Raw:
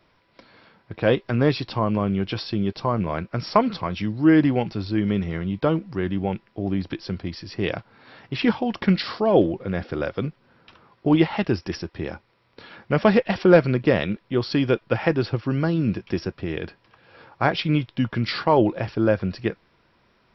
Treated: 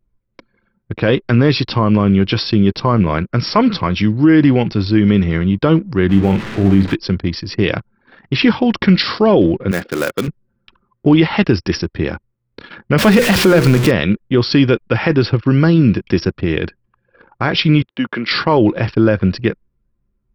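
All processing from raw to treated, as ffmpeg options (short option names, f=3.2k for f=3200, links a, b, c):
-filter_complex "[0:a]asettb=1/sr,asplit=3[a][b][c];[a]atrim=end=6.094[d];[b]atrim=start=6.09:end=6.95,asetpts=PTS-STARTPTS,afade=t=in:d=0.004:c=qsin,afade=t=out:st=0.856:d=0.004:c=qsin,aeval=exprs='val(0)+0.5*0.0251*sgn(val(0))':c=same,acrossover=split=3400[e][f];[f]acompressor=threshold=-51dB:ratio=4:attack=1:release=60[g];[e][g]amix=inputs=2:normalize=0,asplit=2[h][i];[i]adelay=41,volume=-7dB[j];[h][j]amix=inputs=2:normalize=0,atrim=end_sample=37926[k];[c]atrim=start=6.946[l];[d][k]acrossfade=d=0.004:c1=hsin:c2=qsin[m];[m][l]acrossfade=d=0.004:c1=qsin:c2=hsin,asettb=1/sr,asplit=3[n][o][p];[n]atrim=end=9.714[q];[o]atrim=start=9.71:end=10.28,asetpts=PTS-STARTPTS,afade=t=in:d=0.004:c=qsin,afade=t=out:st=0.566:d=0.004:c=qsin,highpass=160,lowshelf=f=370:g=-5.5,acrusher=bits=3:mode=log:mix=0:aa=0.000001[r];[p]atrim=start=10.276[s];[q][r]acrossfade=d=0.004:c1=hsin:c2=qsin[t];[t][s]acrossfade=d=0.004:c1=qsin:c2=hsin,asettb=1/sr,asplit=3[u][v][w];[u]atrim=end=12.984[x];[v]atrim=start=12.98:end=13.91,asetpts=PTS-STARTPTS,afade=t=in:d=0.004:c=qsin,afade=t=out:st=0.926:d=0.004:c=qsin,aeval=exprs='val(0)+0.5*0.0668*sgn(val(0))':c=same,bandreject=f=60:t=h:w=6,bandreject=f=120:t=h:w=6,bandreject=f=180:t=h:w=6,bandreject=f=240:t=h:w=6,bandreject=f=300:t=h:w=6,bandreject=f=360:t=h:w=6,bandreject=f=420:t=h:w=6,bandreject=f=480:t=h:w=6[y];[w]atrim=start=13.906[z];[x][y]acrossfade=d=0.004:c1=hsin:c2=qsin[aa];[aa][z]acrossfade=d=0.004:c1=qsin:c2=hsin,asettb=1/sr,asplit=3[ab][ac][ad];[ab]atrim=end=17.824[ae];[ac]atrim=start=17.82:end=18.31,asetpts=PTS-STARTPTS,afade=t=in:d=0.004:c=qsin,afade=t=out:st=0.486:d=0.004:c=qsin,highpass=f=150:w=0.5412,highpass=f=150:w=1.3066,bass=f=250:g=-14,treble=f=4k:g=-13[af];[ad]atrim=start=18.306[ag];[ae][af]acrossfade=d=0.004:c1=hsin:c2=qsin[ah];[ah][ag]acrossfade=d=0.004:c1=qsin:c2=hsin,anlmdn=0.158,equalizer=f=710:w=1.6:g=-6.5,alimiter=level_in=13dB:limit=-1dB:release=50:level=0:latency=1,volume=-1dB"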